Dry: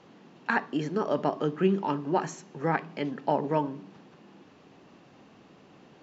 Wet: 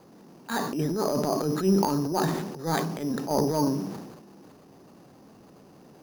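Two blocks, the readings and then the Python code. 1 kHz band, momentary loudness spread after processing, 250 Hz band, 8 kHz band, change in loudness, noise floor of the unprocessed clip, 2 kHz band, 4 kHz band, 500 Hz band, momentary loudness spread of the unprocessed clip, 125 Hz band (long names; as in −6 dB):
0.0 dB, 10 LU, +4.0 dB, can't be measured, +2.5 dB, −56 dBFS, −4.5 dB, +7.5 dB, +1.5 dB, 9 LU, +4.5 dB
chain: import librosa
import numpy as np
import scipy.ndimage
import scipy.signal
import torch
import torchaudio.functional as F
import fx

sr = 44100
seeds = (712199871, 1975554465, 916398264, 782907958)

y = fx.transient(x, sr, attack_db=-10, sustain_db=8)
y = fx.lowpass(y, sr, hz=1000.0, slope=6)
y = np.repeat(y[::8], 8)[:len(y)]
y = fx.sustainer(y, sr, db_per_s=48.0)
y = y * librosa.db_to_amplitude(3.5)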